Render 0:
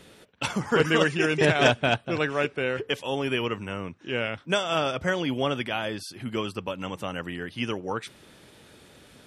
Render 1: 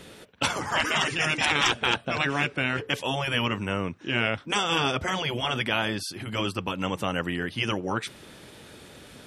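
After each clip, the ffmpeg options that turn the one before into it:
-af "afftfilt=real='re*lt(hypot(re,im),0.2)':imag='im*lt(hypot(re,im),0.2)':win_size=1024:overlap=0.75,volume=5dB"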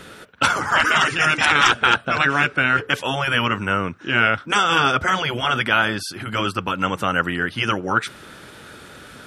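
-af "equalizer=f=1.4k:t=o:w=0.52:g=11,volume=4dB"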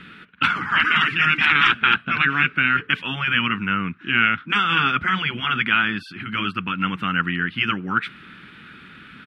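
-af "firequalizer=gain_entry='entry(110,0);entry(180,10);entry(560,-13);entry(1200,4);entry(2500,10);entry(6000,-16)':delay=0.05:min_phase=1,volume=-6.5dB"

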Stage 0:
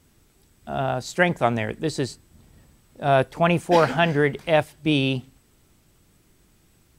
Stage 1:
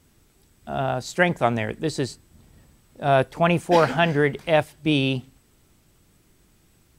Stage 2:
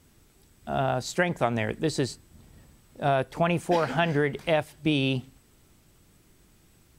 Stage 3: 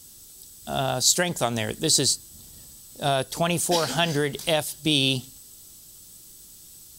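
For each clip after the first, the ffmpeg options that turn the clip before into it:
-af anull
-af "acompressor=threshold=-20dB:ratio=6"
-af "aexciter=amount=5.2:drive=7.5:freq=3.3k"

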